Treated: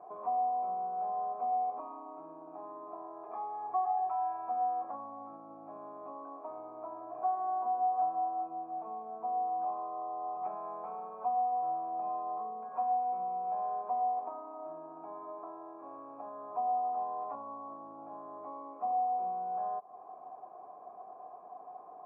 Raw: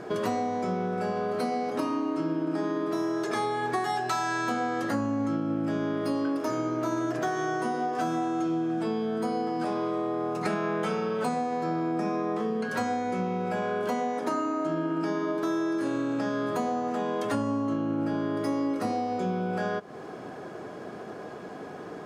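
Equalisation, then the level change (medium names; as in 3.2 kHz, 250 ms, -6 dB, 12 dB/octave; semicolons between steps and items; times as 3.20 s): cascade formant filter a; high-pass 260 Hz 6 dB/octave; distance through air 190 m; +3.0 dB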